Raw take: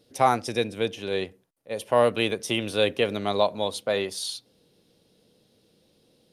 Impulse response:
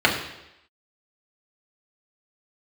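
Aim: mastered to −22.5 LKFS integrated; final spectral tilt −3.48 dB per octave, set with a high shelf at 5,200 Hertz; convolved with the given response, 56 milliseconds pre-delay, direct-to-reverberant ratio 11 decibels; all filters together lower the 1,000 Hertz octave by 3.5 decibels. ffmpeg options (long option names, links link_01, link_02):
-filter_complex "[0:a]equalizer=frequency=1000:width_type=o:gain=-5,highshelf=frequency=5200:gain=5.5,asplit=2[link_01][link_02];[1:a]atrim=start_sample=2205,adelay=56[link_03];[link_02][link_03]afir=irnorm=-1:irlink=0,volume=-31.5dB[link_04];[link_01][link_04]amix=inputs=2:normalize=0,volume=4dB"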